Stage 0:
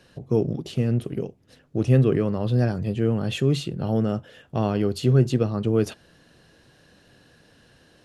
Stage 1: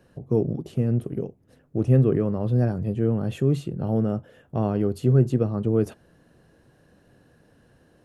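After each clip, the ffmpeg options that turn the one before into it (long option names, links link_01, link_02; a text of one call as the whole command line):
ffmpeg -i in.wav -af "equalizer=frequency=4000:width=0.53:gain=-13.5" out.wav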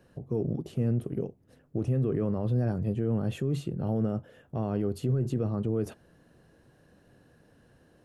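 ffmpeg -i in.wav -af "alimiter=limit=-18dB:level=0:latency=1:release=23,volume=-2.5dB" out.wav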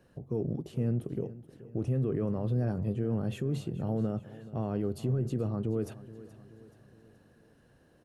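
ffmpeg -i in.wav -af "aecho=1:1:427|854|1281|1708:0.141|0.0706|0.0353|0.0177,volume=-2.5dB" out.wav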